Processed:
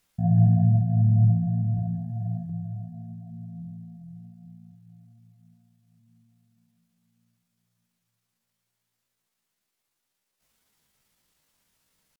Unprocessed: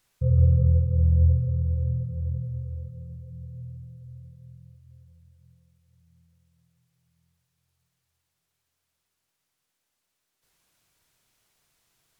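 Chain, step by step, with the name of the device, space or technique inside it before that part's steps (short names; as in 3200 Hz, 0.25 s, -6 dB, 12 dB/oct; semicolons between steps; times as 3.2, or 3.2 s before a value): 1.74–2.5 flutter echo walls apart 7.9 m, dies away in 0.85 s; chipmunk voice (pitch shift +5.5 st)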